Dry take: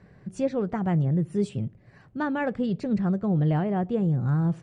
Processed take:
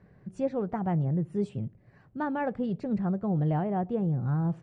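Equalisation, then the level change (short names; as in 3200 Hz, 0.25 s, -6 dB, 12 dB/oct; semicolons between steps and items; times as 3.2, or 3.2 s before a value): high shelf 2800 Hz -9.5 dB; dynamic EQ 810 Hz, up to +5 dB, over -43 dBFS, Q 1.8; -4.0 dB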